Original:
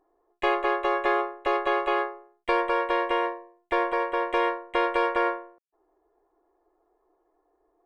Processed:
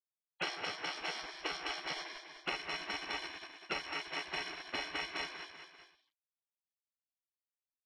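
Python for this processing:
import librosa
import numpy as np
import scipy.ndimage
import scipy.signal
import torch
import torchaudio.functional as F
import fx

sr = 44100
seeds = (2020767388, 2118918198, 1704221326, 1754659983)

y = fx.bit_reversed(x, sr, seeds[0], block=128)
y = fx.transient(y, sr, attack_db=-2, sustain_db=-8)
y = fx.peak_eq(y, sr, hz=270.0, db=9.0, octaves=1.0)
y = fx.echo_banded(y, sr, ms=137, feedback_pct=49, hz=860.0, wet_db=-9.0)
y = fx.quant_dither(y, sr, seeds[1], bits=8, dither='none')
y = scipy.signal.sosfilt(scipy.signal.butter(4, 2500.0, 'lowpass', fs=sr, output='sos'), y)
y = fx.low_shelf(y, sr, hz=76.0, db=11.0)
y = fx.echo_feedback(y, sr, ms=196, feedback_pct=26, wet_db=-14.0)
y = fx.spec_gate(y, sr, threshold_db=-25, keep='weak')
y = fx.band_squash(y, sr, depth_pct=100)
y = F.gain(torch.from_numpy(y), 12.0).numpy()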